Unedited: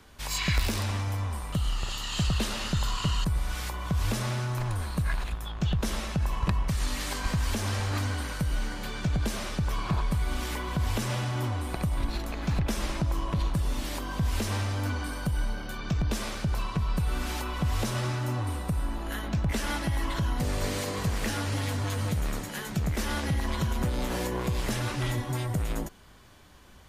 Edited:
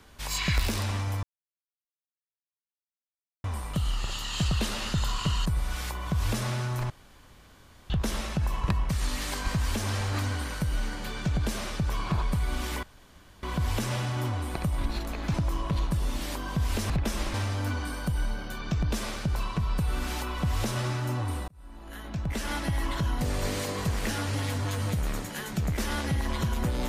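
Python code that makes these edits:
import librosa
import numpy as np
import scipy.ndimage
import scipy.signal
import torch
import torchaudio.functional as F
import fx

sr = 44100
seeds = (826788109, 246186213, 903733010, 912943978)

y = fx.edit(x, sr, fx.insert_silence(at_s=1.23, length_s=2.21),
    fx.room_tone_fill(start_s=4.69, length_s=1.0),
    fx.insert_room_tone(at_s=10.62, length_s=0.6),
    fx.move(start_s=12.53, length_s=0.44, to_s=14.53),
    fx.fade_in_span(start_s=18.67, length_s=1.19), tone=tone)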